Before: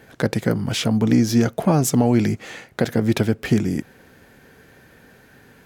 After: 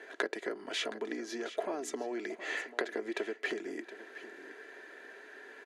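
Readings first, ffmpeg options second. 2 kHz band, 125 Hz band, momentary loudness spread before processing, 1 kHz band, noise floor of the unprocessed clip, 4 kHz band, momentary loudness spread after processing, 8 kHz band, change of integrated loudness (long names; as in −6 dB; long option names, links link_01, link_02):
−5.5 dB, below −40 dB, 9 LU, −13.5 dB, −51 dBFS, −11.0 dB, 14 LU, −17.5 dB, −17.5 dB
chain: -filter_complex "[0:a]acompressor=threshold=-28dB:ratio=6,highpass=frequency=350:width=0.5412,highpass=frequency=350:width=1.3066,equalizer=frequency=420:width_type=q:width=4:gain=6,equalizer=frequency=1800:width_type=q:width=4:gain=8,equalizer=frequency=5400:width_type=q:width=4:gain=-7,equalizer=frequency=8000:width_type=q:width=4:gain=-6,lowpass=frequency=8600:width=0.5412,lowpass=frequency=8600:width=1.3066,aecho=1:1:3:0.44,asplit=2[link_01][link_02];[link_02]aecho=0:1:719:0.2[link_03];[link_01][link_03]amix=inputs=2:normalize=0,volume=-3dB"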